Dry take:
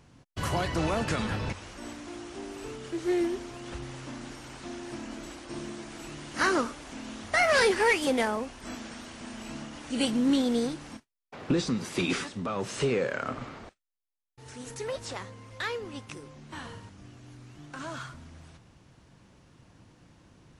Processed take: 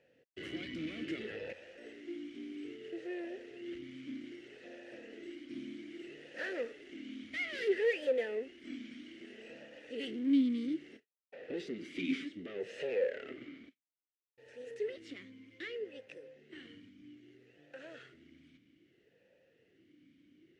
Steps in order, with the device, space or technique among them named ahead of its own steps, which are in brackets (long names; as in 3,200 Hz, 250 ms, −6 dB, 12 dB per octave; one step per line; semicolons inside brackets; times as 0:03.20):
talk box (tube saturation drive 29 dB, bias 0.6; formant filter swept between two vowels e-i 0.62 Hz)
level +6.5 dB